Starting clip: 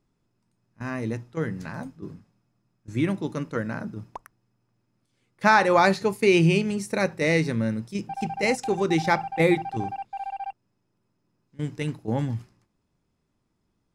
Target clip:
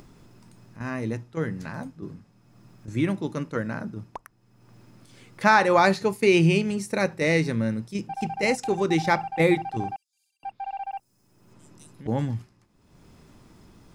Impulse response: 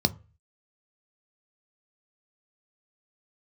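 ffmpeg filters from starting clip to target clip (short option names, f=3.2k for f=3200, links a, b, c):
-filter_complex "[0:a]acompressor=mode=upward:threshold=-33dB:ratio=2.5,asettb=1/sr,asplit=3[a][b][c];[a]atrim=end=9.964[d];[b]atrim=start=9.96:end=12.07,asetpts=PTS-STARTPTS,afade=t=in:d=0.004:c=qsin,afade=t=out:st=2.106:d=0.004:c=qsin,acrossover=split=5400[e][f];[e]adelay=470[g];[g][f]amix=inputs=2:normalize=0,atrim=end_sample=93051[h];[c]atrim=start=12.066[i];[d][h]acrossfade=d=0.004:c1=hsin:c2=qsin[j];[j][i]acrossfade=d=0.004:c1=qsin:c2=hsin"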